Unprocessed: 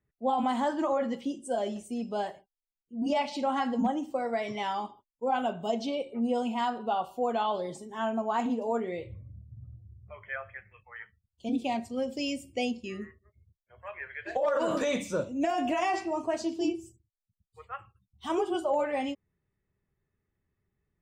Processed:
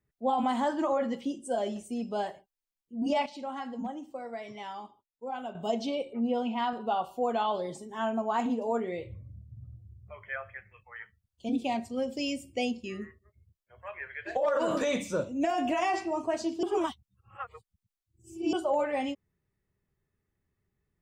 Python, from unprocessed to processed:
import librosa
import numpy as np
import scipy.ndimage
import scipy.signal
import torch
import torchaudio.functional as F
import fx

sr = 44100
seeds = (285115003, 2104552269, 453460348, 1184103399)

y = fx.cheby1_bandpass(x, sr, low_hz=130.0, high_hz=3600.0, order=2, at=(6.13, 6.73))
y = fx.edit(y, sr, fx.clip_gain(start_s=3.26, length_s=2.29, db=-8.5),
    fx.reverse_span(start_s=16.63, length_s=1.9), tone=tone)